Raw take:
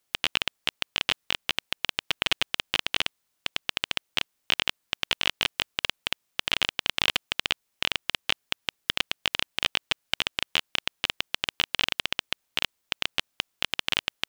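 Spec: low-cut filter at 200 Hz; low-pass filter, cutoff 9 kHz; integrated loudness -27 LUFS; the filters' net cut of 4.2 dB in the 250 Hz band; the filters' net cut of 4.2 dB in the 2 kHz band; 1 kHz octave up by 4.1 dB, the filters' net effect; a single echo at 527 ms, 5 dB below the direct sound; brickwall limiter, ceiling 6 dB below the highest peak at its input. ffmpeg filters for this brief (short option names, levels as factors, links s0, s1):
-af "highpass=200,lowpass=9000,equalizer=f=250:t=o:g=-4,equalizer=f=1000:t=o:g=7.5,equalizer=f=2000:t=o:g=-7.5,alimiter=limit=0.282:level=0:latency=1,aecho=1:1:527:0.562,volume=2.24"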